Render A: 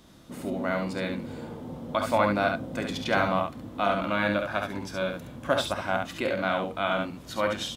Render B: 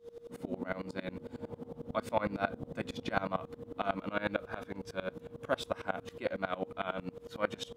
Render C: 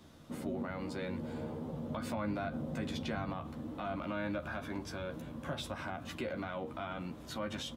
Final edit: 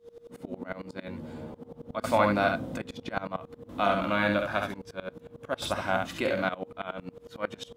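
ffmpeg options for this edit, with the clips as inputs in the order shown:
-filter_complex "[0:a]asplit=3[s0][s1][s2];[1:a]asplit=5[s3][s4][s5][s6][s7];[s3]atrim=end=1.082[s8];[2:a]atrim=start=1.078:end=1.542[s9];[s4]atrim=start=1.538:end=2.042[s10];[s0]atrim=start=2.038:end=2.782[s11];[s5]atrim=start=2.778:end=3.692[s12];[s1]atrim=start=3.688:end=4.742[s13];[s6]atrim=start=4.738:end=5.622[s14];[s2]atrim=start=5.618:end=6.492[s15];[s7]atrim=start=6.488[s16];[s8][s9]acrossfade=d=0.004:c1=hsin:c2=hsin[s17];[s17][s10]acrossfade=d=0.004:c1=hsin:c2=hsin[s18];[s18][s11]acrossfade=d=0.004:c1=hsin:c2=hsin[s19];[s19][s12]acrossfade=d=0.004:c1=hsin:c2=hsin[s20];[s20][s13]acrossfade=d=0.004:c1=hsin:c2=hsin[s21];[s21][s14]acrossfade=d=0.004:c1=hsin:c2=hsin[s22];[s22][s15]acrossfade=d=0.004:c1=hsin:c2=hsin[s23];[s23][s16]acrossfade=d=0.004:c1=hsin:c2=hsin"

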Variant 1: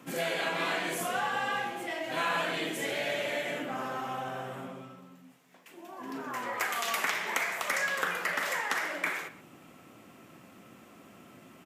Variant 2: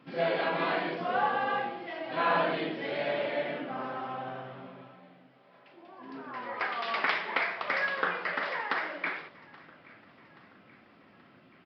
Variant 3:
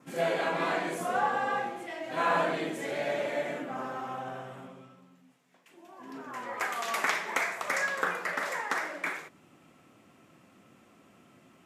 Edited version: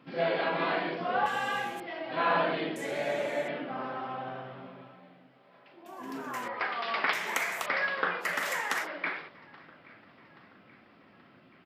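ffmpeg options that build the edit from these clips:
-filter_complex "[0:a]asplit=4[s0][s1][s2][s3];[1:a]asplit=6[s4][s5][s6][s7][s8][s9];[s4]atrim=end=1.262[s10];[s0]atrim=start=1.258:end=1.802[s11];[s5]atrim=start=1.798:end=2.762[s12];[2:a]atrim=start=2.758:end=3.482[s13];[s6]atrim=start=3.478:end=5.862[s14];[s1]atrim=start=5.858:end=6.482[s15];[s7]atrim=start=6.478:end=7.132[s16];[s2]atrim=start=7.128:end=7.662[s17];[s8]atrim=start=7.658:end=8.26[s18];[s3]atrim=start=8.2:end=8.88[s19];[s9]atrim=start=8.82[s20];[s10][s11]acrossfade=d=0.004:c1=hsin:c2=hsin[s21];[s21][s12]acrossfade=d=0.004:c1=hsin:c2=hsin[s22];[s22][s13]acrossfade=d=0.004:c1=hsin:c2=hsin[s23];[s23][s14]acrossfade=d=0.004:c1=hsin:c2=hsin[s24];[s24][s15]acrossfade=d=0.004:c1=hsin:c2=hsin[s25];[s25][s16]acrossfade=d=0.004:c1=hsin:c2=hsin[s26];[s26][s17]acrossfade=d=0.004:c1=hsin:c2=hsin[s27];[s27][s18]acrossfade=d=0.004:c1=hsin:c2=hsin[s28];[s28][s19]acrossfade=d=0.06:c1=tri:c2=tri[s29];[s29][s20]acrossfade=d=0.06:c1=tri:c2=tri"

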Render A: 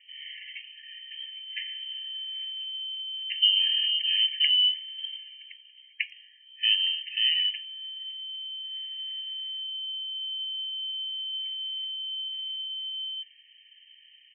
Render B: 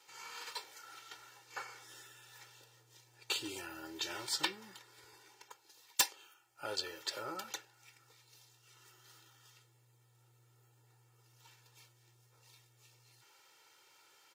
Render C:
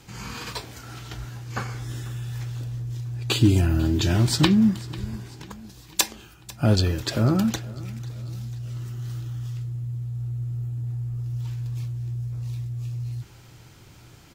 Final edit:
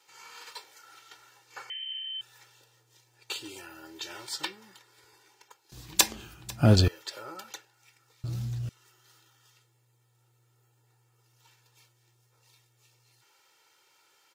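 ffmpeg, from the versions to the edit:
-filter_complex "[2:a]asplit=2[s0][s1];[1:a]asplit=4[s2][s3][s4][s5];[s2]atrim=end=1.702[s6];[0:a]atrim=start=1.698:end=2.212[s7];[s3]atrim=start=2.208:end=5.722[s8];[s0]atrim=start=5.718:end=6.882[s9];[s4]atrim=start=6.878:end=8.242[s10];[s1]atrim=start=8.238:end=8.692[s11];[s5]atrim=start=8.688[s12];[s6][s7]acrossfade=d=0.004:c1=hsin:c2=hsin[s13];[s13][s8]acrossfade=d=0.004:c1=hsin:c2=hsin[s14];[s14][s9]acrossfade=d=0.004:c1=hsin:c2=hsin[s15];[s15][s10]acrossfade=d=0.004:c1=hsin:c2=hsin[s16];[s16][s11]acrossfade=d=0.004:c1=hsin:c2=hsin[s17];[s17][s12]acrossfade=d=0.004:c1=hsin:c2=hsin"

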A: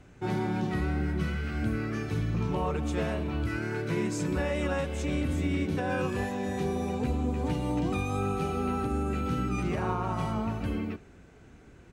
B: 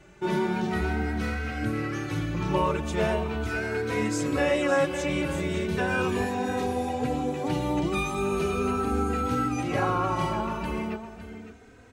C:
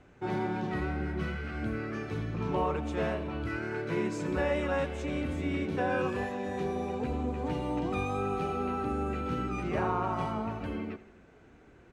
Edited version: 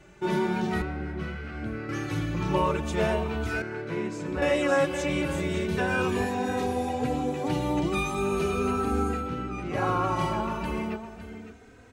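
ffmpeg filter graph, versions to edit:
-filter_complex "[2:a]asplit=3[s0][s1][s2];[1:a]asplit=4[s3][s4][s5][s6];[s3]atrim=end=0.822[s7];[s0]atrim=start=0.818:end=1.892[s8];[s4]atrim=start=1.888:end=3.622[s9];[s1]atrim=start=3.618:end=4.422[s10];[s5]atrim=start=4.418:end=9.31[s11];[s2]atrim=start=9.07:end=9.89[s12];[s6]atrim=start=9.65[s13];[s7][s8]acrossfade=d=0.004:c1=hsin:c2=hsin[s14];[s14][s9]acrossfade=d=0.004:c1=hsin:c2=hsin[s15];[s15][s10]acrossfade=d=0.004:c1=hsin:c2=hsin[s16];[s16][s11]acrossfade=d=0.004:c1=hsin:c2=hsin[s17];[s17][s12]acrossfade=d=0.24:c1=tri:c2=tri[s18];[s18][s13]acrossfade=d=0.24:c1=tri:c2=tri"

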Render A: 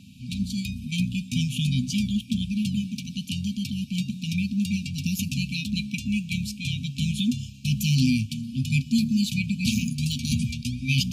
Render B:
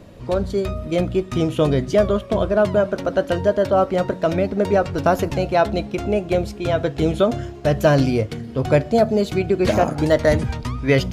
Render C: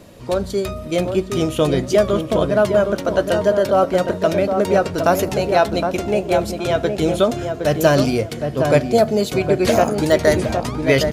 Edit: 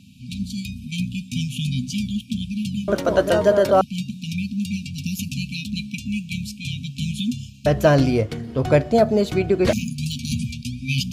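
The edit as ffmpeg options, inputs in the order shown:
-filter_complex "[0:a]asplit=3[s0][s1][s2];[s0]atrim=end=2.882[s3];[2:a]atrim=start=2.878:end=3.812[s4];[s1]atrim=start=3.808:end=7.662[s5];[1:a]atrim=start=7.658:end=9.732[s6];[s2]atrim=start=9.728[s7];[s3][s4]acrossfade=d=0.004:c1=hsin:c2=hsin[s8];[s8][s5]acrossfade=d=0.004:c1=hsin:c2=hsin[s9];[s9][s6]acrossfade=d=0.004:c1=hsin:c2=hsin[s10];[s10][s7]acrossfade=d=0.004:c1=hsin:c2=hsin"

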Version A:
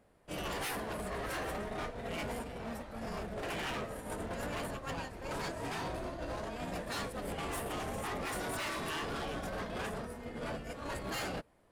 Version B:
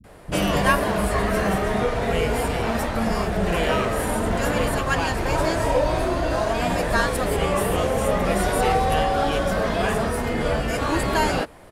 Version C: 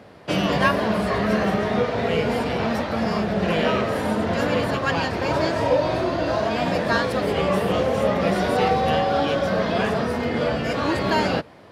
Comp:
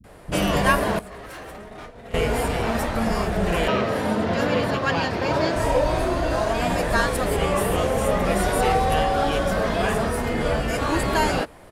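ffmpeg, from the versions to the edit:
-filter_complex "[1:a]asplit=3[s0][s1][s2];[s0]atrim=end=0.992[s3];[0:a]atrim=start=0.988:end=2.142[s4];[s1]atrim=start=2.138:end=3.682[s5];[2:a]atrim=start=3.678:end=5.562[s6];[s2]atrim=start=5.558[s7];[s3][s4]acrossfade=d=0.004:c1=hsin:c2=hsin[s8];[s8][s5]acrossfade=d=0.004:c1=hsin:c2=hsin[s9];[s9][s6]acrossfade=d=0.004:c1=hsin:c2=hsin[s10];[s10][s7]acrossfade=d=0.004:c1=hsin:c2=hsin"

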